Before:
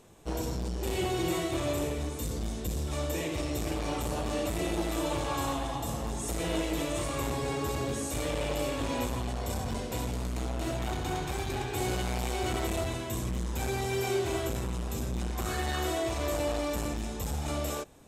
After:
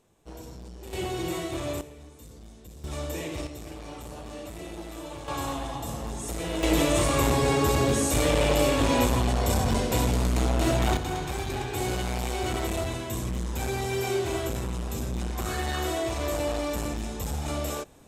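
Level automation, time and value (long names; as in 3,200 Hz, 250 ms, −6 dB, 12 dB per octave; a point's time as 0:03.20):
−9.5 dB
from 0:00.93 −1 dB
from 0:01.81 −13.5 dB
from 0:02.84 −1 dB
from 0:03.47 −8 dB
from 0:05.28 0 dB
from 0:06.63 +9 dB
from 0:10.97 +2 dB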